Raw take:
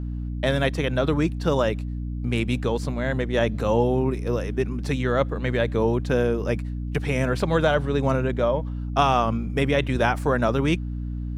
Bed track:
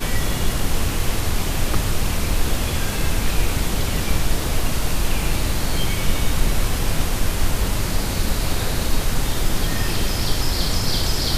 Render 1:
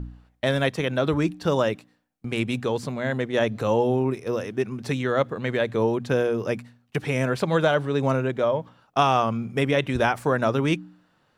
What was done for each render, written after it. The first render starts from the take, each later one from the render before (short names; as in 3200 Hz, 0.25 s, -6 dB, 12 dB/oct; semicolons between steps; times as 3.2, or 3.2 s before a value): de-hum 60 Hz, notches 5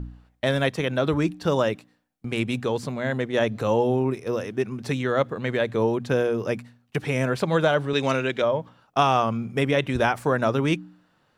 7.93–8.42 weighting filter D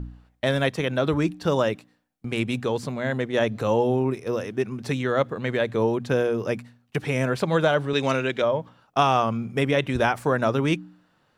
nothing audible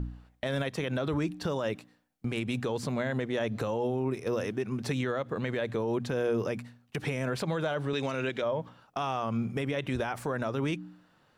compressor, threshold -23 dBFS, peak gain reduction 8.5 dB; limiter -21 dBFS, peak gain reduction 9.5 dB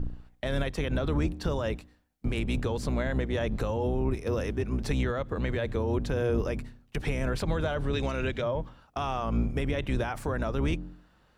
octaver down 2 oct, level +3 dB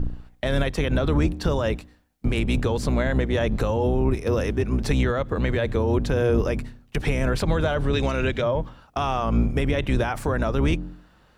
gain +6.5 dB